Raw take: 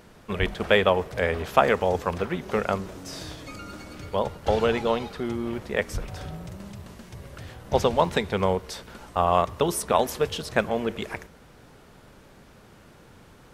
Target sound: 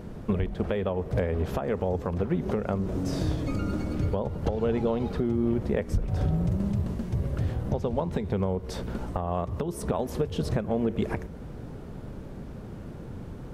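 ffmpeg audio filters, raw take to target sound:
ffmpeg -i in.wav -af "tiltshelf=frequency=690:gain=9.5,acompressor=threshold=-25dB:ratio=20,alimiter=limit=-21dB:level=0:latency=1:release=279,volume=5.5dB" out.wav

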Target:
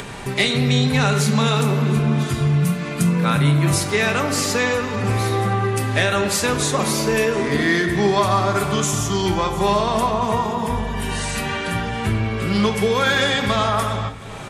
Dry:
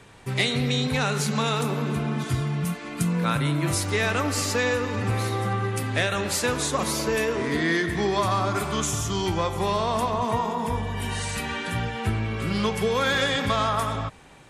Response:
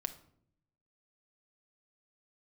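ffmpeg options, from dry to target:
-filter_complex "[0:a]acompressor=mode=upward:threshold=-27dB:ratio=2.5,aecho=1:1:721|1442|2163|2884:0.0794|0.0437|0.024|0.0132[link_01];[1:a]atrim=start_sample=2205,asetrate=48510,aresample=44100[link_02];[link_01][link_02]afir=irnorm=-1:irlink=0,volume=6.5dB"

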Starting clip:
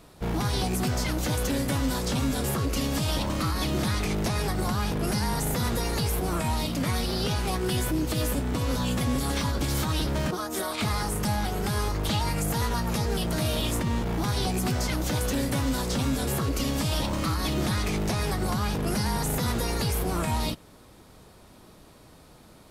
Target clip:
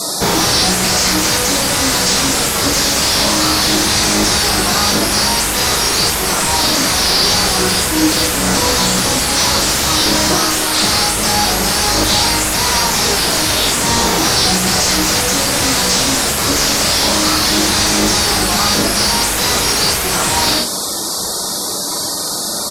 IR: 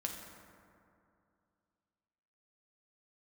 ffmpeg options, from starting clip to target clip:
-filter_complex "[0:a]aexciter=amount=13.4:drive=4.2:freq=4200[link_01];[1:a]atrim=start_sample=2205,atrim=end_sample=4410[link_02];[link_01][link_02]afir=irnorm=-1:irlink=0,asplit=2[link_03][link_04];[link_04]highpass=frequency=720:poles=1,volume=32dB,asoftclip=type=tanh:threshold=-4.5dB[link_05];[link_03][link_05]amix=inputs=2:normalize=0,lowpass=frequency=2100:poles=1,volume=-6dB,afftfilt=real='re*gte(hypot(re,im),0.0251)':imag='im*gte(hypot(re,im),0.0251)':win_size=1024:overlap=0.75,asplit=2[link_06][link_07];[link_07]adelay=42,volume=-6.5dB[link_08];[link_06][link_08]amix=inputs=2:normalize=0,asplit=2[link_09][link_10];[link_10]alimiter=limit=-19dB:level=0:latency=1,volume=1dB[link_11];[link_09][link_11]amix=inputs=2:normalize=0,acrossover=split=7500[link_12][link_13];[link_13]acompressor=threshold=-26dB:ratio=4:attack=1:release=60[link_14];[link_12][link_14]amix=inputs=2:normalize=0,volume=2.5dB"

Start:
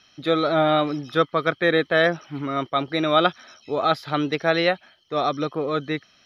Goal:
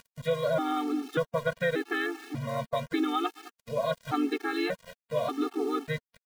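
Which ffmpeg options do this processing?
ffmpeg -i in.wav -filter_complex "[0:a]highshelf=frequency=4300:gain=-11,asplit=2[link_01][link_02];[link_02]adelay=211,lowpass=frequency=4800:poles=1,volume=-23dB,asplit=2[link_03][link_04];[link_04]adelay=211,lowpass=frequency=4800:poles=1,volume=0.26[link_05];[link_01][link_03][link_05]amix=inputs=3:normalize=0,acompressor=threshold=-22dB:ratio=5,asplit=2[link_06][link_07];[link_07]asetrate=37084,aresample=44100,atempo=1.18921,volume=-7dB[link_08];[link_06][link_08]amix=inputs=2:normalize=0,acompressor=mode=upward:threshold=-36dB:ratio=2.5,equalizer=frequency=1000:width=3.2:gain=-3,aeval=exprs='val(0)*gte(abs(val(0)),0.0133)':channel_layout=same,afftfilt=real='re*gt(sin(2*PI*0.85*pts/sr)*(1-2*mod(floor(b*sr/1024/230),2)),0)':imag='im*gt(sin(2*PI*0.85*pts/sr)*(1-2*mod(floor(b*sr/1024/230),2)),0)':win_size=1024:overlap=0.75" out.wav

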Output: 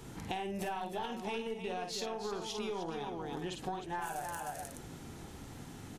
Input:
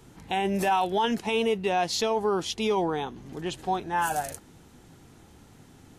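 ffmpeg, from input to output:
ffmpeg -i in.wav -af "aecho=1:1:49|306|422:0.501|0.422|0.178,aeval=exprs='0.316*(cos(1*acos(clip(val(0)/0.316,-1,1)))-cos(1*PI/2))+0.1*(cos(2*acos(clip(val(0)/0.316,-1,1)))-cos(2*PI/2))':channel_layout=same,acompressor=threshold=-40dB:ratio=6,volume=3dB" out.wav

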